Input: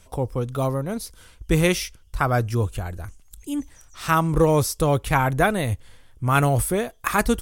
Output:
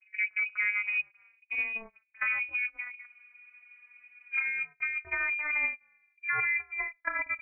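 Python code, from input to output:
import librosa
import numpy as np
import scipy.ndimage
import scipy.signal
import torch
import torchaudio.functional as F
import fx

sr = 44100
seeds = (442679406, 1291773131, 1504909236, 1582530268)

y = fx.vocoder_glide(x, sr, note=55, semitones=10)
y = fx.env_lowpass(y, sr, base_hz=510.0, full_db=-15.5)
y = fx.over_compress(y, sr, threshold_db=-24.0, ratio=-1.0)
y = fx.freq_invert(y, sr, carrier_hz=2700)
y = fx.spec_freeze(y, sr, seeds[0], at_s=3.08, hold_s=1.24)
y = y * 10.0 ** (-6.0 / 20.0)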